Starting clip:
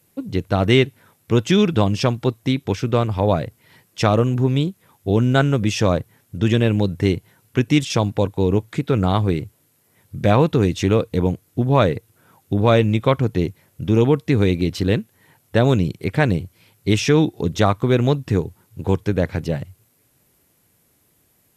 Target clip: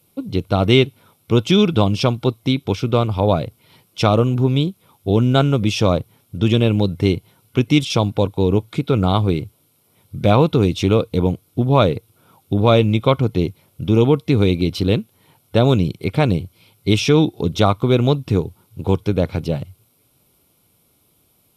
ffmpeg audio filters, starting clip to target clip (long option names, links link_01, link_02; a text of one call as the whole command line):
ffmpeg -i in.wav -af "superequalizer=11b=0.316:13b=1.41:15b=0.562,volume=1.5dB" out.wav